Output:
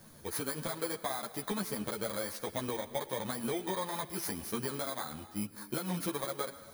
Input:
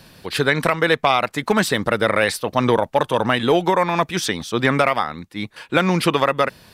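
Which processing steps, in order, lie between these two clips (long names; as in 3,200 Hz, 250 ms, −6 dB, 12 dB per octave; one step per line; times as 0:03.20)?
samples in bit-reversed order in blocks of 16 samples
downward compressor 10 to 1, threshold −23 dBFS, peak gain reduction 12 dB
on a send at −13.5 dB: convolution reverb, pre-delay 93 ms
on the sum: string-ensemble chorus
level −5.5 dB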